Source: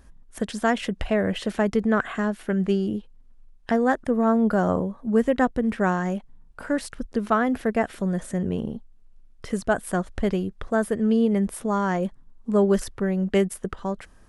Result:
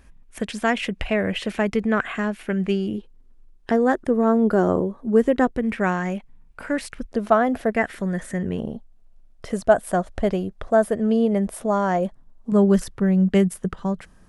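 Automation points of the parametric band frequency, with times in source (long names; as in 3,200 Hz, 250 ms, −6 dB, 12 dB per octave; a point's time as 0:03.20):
parametric band +9 dB 0.59 octaves
2,400 Hz
from 0:02.98 370 Hz
from 0:05.57 2,300 Hz
from 0:07.13 650 Hz
from 0:07.72 1,900 Hz
from 0:08.59 650 Hz
from 0:12.52 170 Hz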